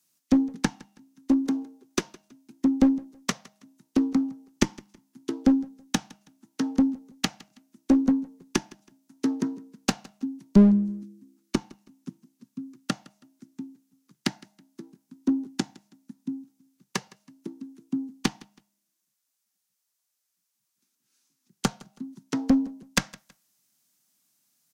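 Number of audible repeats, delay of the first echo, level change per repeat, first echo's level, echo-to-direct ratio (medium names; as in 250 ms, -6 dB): 2, 162 ms, -10.5 dB, -23.0 dB, -22.5 dB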